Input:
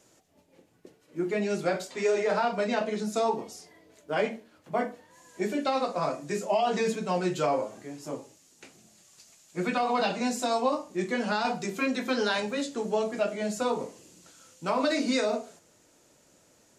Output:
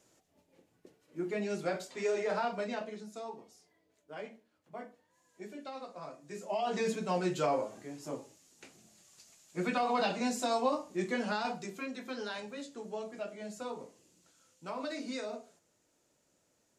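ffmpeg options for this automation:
-af "volume=2,afade=t=out:st=2.47:d=0.62:silence=0.316228,afade=t=in:st=6.23:d=0.72:silence=0.237137,afade=t=out:st=11.11:d=0.76:silence=0.375837"

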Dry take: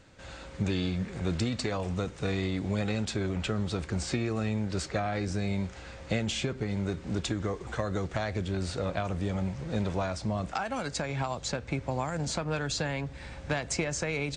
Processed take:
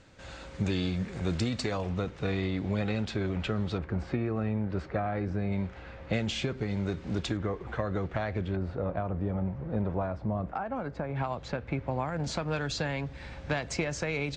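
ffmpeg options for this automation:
-af "asetnsamples=n=441:p=0,asendcmd='1.82 lowpass f 3900;3.78 lowpass f 1700;5.52 lowpass f 2600;6.13 lowpass f 5300;7.37 lowpass f 2600;8.56 lowpass f 1200;11.16 lowpass f 2500;12.24 lowpass f 5300',lowpass=8500"

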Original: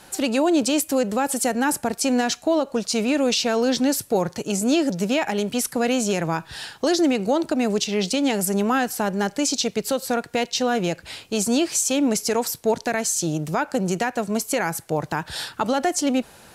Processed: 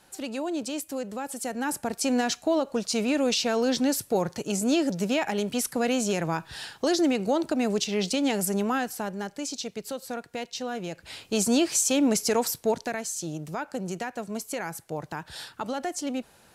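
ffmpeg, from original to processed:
-af "volume=1.78,afade=t=in:st=1.37:d=0.75:silence=0.421697,afade=t=out:st=8.44:d=0.83:silence=0.446684,afade=t=in:st=10.9:d=0.43:silence=0.354813,afade=t=out:st=12.49:d=0.54:silence=0.421697"

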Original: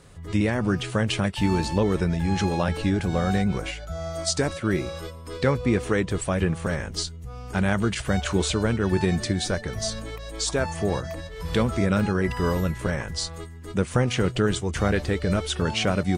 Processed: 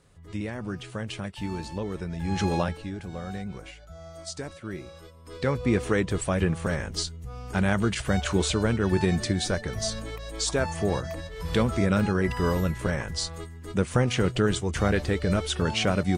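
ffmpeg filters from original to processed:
-af "volume=3.55,afade=t=in:st=2.1:d=0.47:silence=0.316228,afade=t=out:st=2.57:d=0.2:silence=0.251189,afade=t=in:st=5.12:d=0.63:silence=0.281838"

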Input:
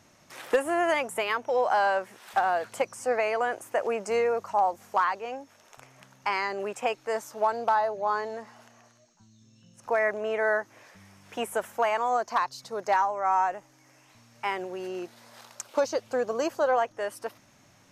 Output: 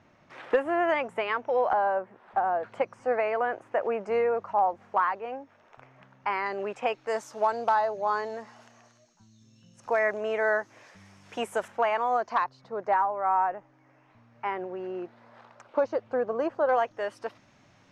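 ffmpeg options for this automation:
-af "asetnsamples=n=441:p=0,asendcmd='1.73 lowpass f 1100;2.63 lowpass f 2100;6.46 lowpass f 3600;7.07 lowpass f 7400;11.68 lowpass f 3300;12.44 lowpass f 1700;16.69 lowpass f 4300',lowpass=2500"

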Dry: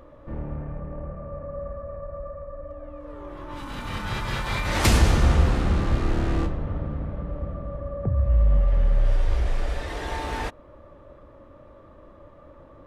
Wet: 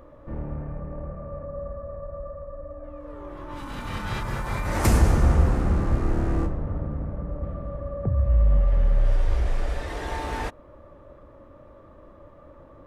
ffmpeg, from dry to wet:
-af "asetnsamples=n=441:p=0,asendcmd='1.45 equalizer g -12;2.84 equalizer g -3;4.23 equalizer g -12.5;7.43 equalizer g -3',equalizer=f=3500:t=o:w=1.4:g=-4"

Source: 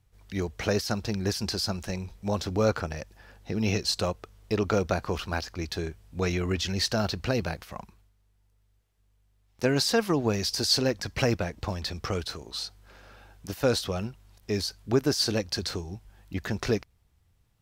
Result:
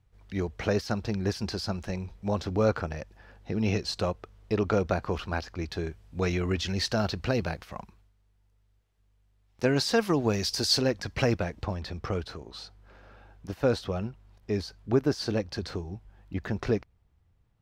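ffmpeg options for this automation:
-af "asetnsamples=n=441:p=0,asendcmd='5.87 lowpass f 4500;9.93 lowpass f 9300;10.81 lowpass f 3900;11.64 lowpass f 1600',lowpass=f=2600:p=1"

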